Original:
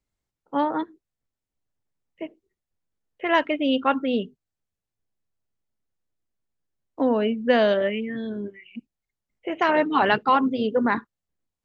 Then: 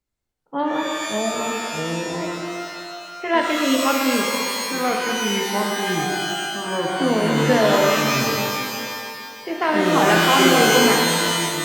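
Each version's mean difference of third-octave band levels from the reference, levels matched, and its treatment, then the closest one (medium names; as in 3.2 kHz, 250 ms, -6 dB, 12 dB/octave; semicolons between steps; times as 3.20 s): 17.0 dB: ever faster or slower copies 392 ms, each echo -5 st, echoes 2; pitch-shifted reverb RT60 2 s, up +12 st, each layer -2 dB, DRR 0.5 dB; trim -1 dB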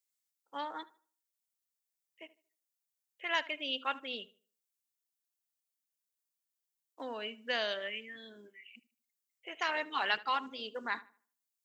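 7.5 dB: differentiator; filtered feedback delay 76 ms, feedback 33%, low-pass 3.2 kHz, level -19 dB; trim +3.5 dB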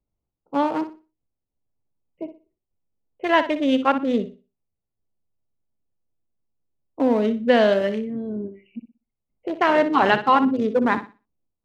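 4.0 dB: local Wiener filter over 25 samples; on a send: flutter echo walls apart 10.4 m, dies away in 0.31 s; on the sum: trim +2.5 dB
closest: third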